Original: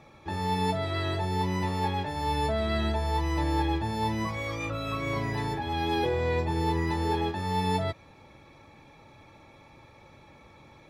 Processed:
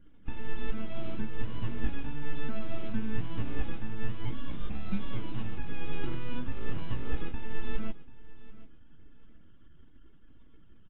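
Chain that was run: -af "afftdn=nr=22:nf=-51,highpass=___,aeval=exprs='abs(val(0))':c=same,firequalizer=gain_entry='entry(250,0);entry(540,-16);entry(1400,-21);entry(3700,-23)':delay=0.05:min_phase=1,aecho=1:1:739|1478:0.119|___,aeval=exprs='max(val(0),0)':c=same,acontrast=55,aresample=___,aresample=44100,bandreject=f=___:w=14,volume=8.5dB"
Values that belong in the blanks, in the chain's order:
900, 0.0261, 8000, 1900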